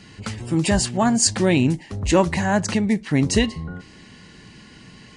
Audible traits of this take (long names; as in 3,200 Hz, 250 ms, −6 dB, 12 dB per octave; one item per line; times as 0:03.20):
background noise floor −46 dBFS
spectral slope −4.5 dB per octave